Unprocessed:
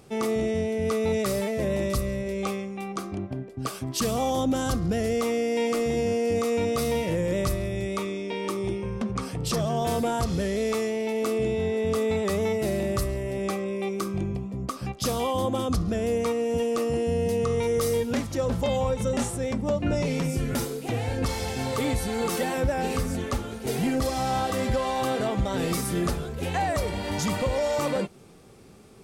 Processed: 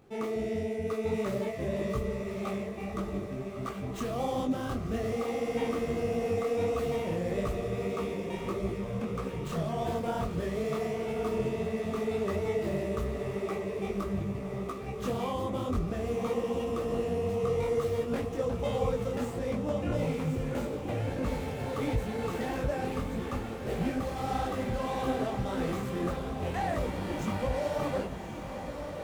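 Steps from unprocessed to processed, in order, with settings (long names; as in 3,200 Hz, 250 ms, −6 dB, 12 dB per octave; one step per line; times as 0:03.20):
running median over 9 samples
feedback delay with all-pass diffusion 1,143 ms, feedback 56%, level −7 dB
micro pitch shift up and down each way 56 cents
level −2.5 dB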